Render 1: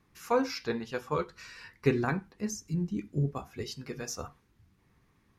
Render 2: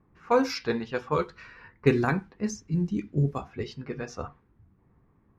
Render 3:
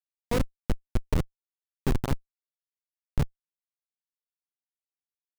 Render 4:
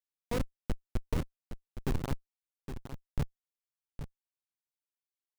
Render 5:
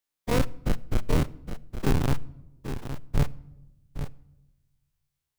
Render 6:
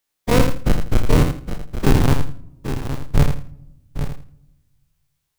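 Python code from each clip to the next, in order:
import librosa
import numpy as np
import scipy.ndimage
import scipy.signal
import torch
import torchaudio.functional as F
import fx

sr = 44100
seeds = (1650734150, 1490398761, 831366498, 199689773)

y1 = fx.env_lowpass(x, sr, base_hz=1000.0, full_db=-25.5)
y1 = F.gain(torch.from_numpy(y1), 4.5).numpy()
y2 = fx.schmitt(y1, sr, flips_db=-18.0)
y2 = fx.low_shelf(y2, sr, hz=350.0, db=6.5)
y2 = F.gain(torch.from_numpy(y2), 3.0).numpy()
y3 = y2 + 10.0 ** (-10.0 / 20.0) * np.pad(y2, (int(815 * sr / 1000.0), 0))[:len(y2)]
y3 = F.gain(torch.from_numpy(y3), -6.5).numpy()
y4 = fx.spec_dilate(y3, sr, span_ms=60)
y4 = fx.room_shoebox(y4, sr, seeds[0], volume_m3=3700.0, walls='furnished', distance_m=0.4)
y4 = F.gain(torch.from_numpy(y4), 5.0).numpy()
y5 = fx.echo_feedback(y4, sr, ms=82, feedback_pct=21, wet_db=-7.0)
y5 = F.gain(torch.from_numpy(y5), 8.5).numpy()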